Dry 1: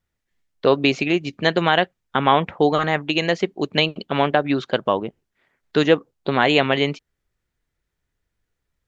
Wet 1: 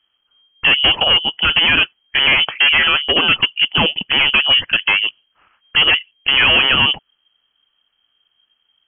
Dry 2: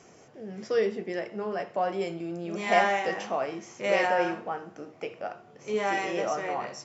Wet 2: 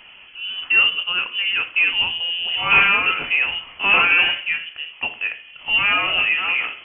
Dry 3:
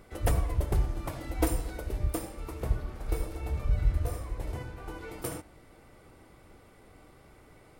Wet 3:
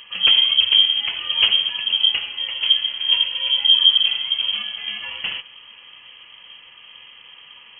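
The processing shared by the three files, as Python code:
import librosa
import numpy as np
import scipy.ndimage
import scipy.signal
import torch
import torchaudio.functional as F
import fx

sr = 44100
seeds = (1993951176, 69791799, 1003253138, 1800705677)

p1 = fx.fold_sine(x, sr, drive_db=15, ceiling_db=-1.0)
p2 = x + (p1 * 10.0 ** (-7.0 / 20.0))
p3 = fx.freq_invert(p2, sr, carrier_hz=3200)
y = p3 * 10.0 ** (-3.5 / 20.0)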